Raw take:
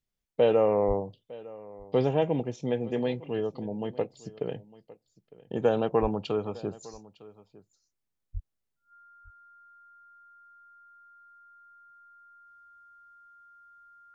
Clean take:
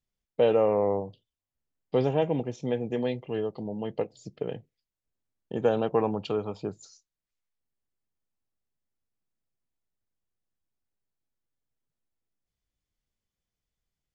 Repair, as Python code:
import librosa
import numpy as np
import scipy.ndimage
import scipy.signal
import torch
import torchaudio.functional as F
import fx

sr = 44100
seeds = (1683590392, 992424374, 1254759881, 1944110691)

y = fx.notch(x, sr, hz=1400.0, q=30.0)
y = fx.highpass(y, sr, hz=140.0, slope=24, at=(0.87, 0.99), fade=0.02)
y = fx.highpass(y, sr, hz=140.0, slope=24, at=(6.01, 6.13), fade=0.02)
y = fx.highpass(y, sr, hz=140.0, slope=24, at=(8.33, 8.45), fade=0.02)
y = fx.fix_echo_inverse(y, sr, delay_ms=906, level_db=-20.5)